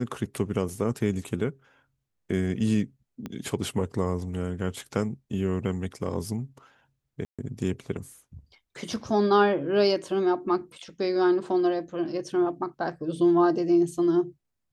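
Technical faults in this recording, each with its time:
0:03.26: click −21 dBFS
0:07.25–0:07.39: drop-out 136 ms

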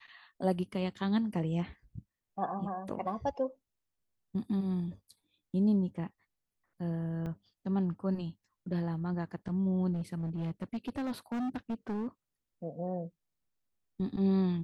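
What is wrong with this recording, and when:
0:07.26–0:07.27: drop-out 5.1 ms
0:09.93–0:12.07: clipping −31.5 dBFS

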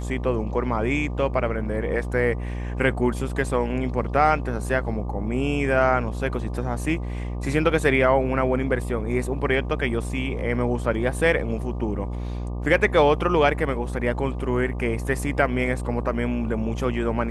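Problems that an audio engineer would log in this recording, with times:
mains buzz 60 Hz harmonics 20 −29 dBFS

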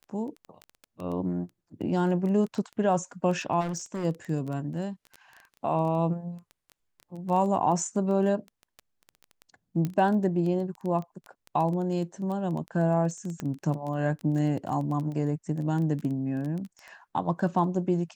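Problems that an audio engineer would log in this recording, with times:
surface crackle 11 per second −32 dBFS
0:03.60–0:04.05: clipping −28 dBFS
0:09.85: click −17 dBFS
0:13.40: click −20 dBFS

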